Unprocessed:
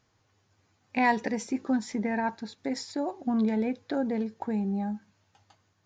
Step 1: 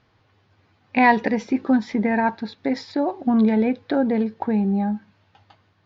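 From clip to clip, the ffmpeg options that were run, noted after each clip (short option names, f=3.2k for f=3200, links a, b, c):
-af "lowpass=f=4.2k:w=0.5412,lowpass=f=4.2k:w=1.3066,volume=8.5dB"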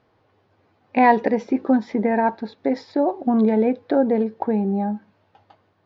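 -af "equalizer=f=510:t=o:w=2.5:g=11.5,volume=-7dB"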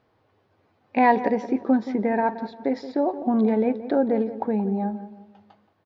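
-filter_complex "[0:a]asplit=2[a][b];[b]adelay=175,lowpass=f=1.5k:p=1,volume=-12.5dB,asplit=2[c][d];[d]adelay=175,lowpass=f=1.5k:p=1,volume=0.39,asplit=2[e][f];[f]adelay=175,lowpass=f=1.5k:p=1,volume=0.39,asplit=2[g][h];[h]adelay=175,lowpass=f=1.5k:p=1,volume=0.39[i];[a][c][e][g][i]amix=inputs=5:normalize=0,volume=-3dB"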